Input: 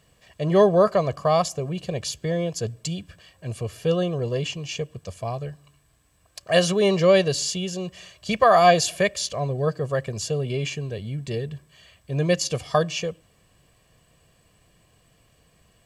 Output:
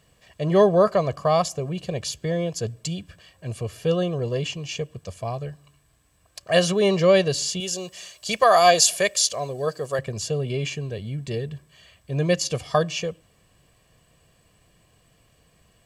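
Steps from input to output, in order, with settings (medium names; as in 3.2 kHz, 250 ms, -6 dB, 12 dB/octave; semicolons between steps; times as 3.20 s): 7.60–9.99 s: tone controls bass -10 dB, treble +10 dB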